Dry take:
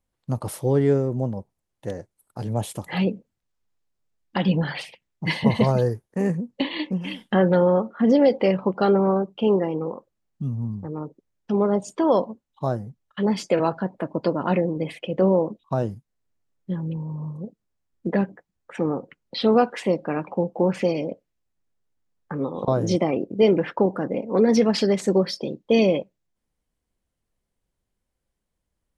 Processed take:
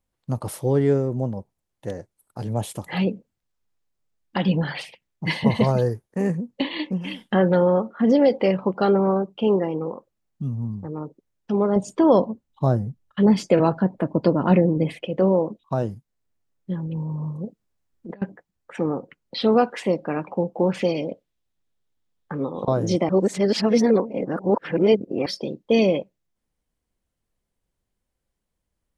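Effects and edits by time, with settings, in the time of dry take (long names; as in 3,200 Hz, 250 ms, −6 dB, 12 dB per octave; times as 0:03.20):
0:11.76–0:15.05: low-shelf EQ 340 Hz +9 dB
0:16.86–0:18.22: compressor whose output falls as the input rises −29 dBFS, ratio −0.5
0:20.62–0:22.42: parametric band 3,500 Hz +6.5 dB 0.56 octaves
0:23.09–0:25.26: reverse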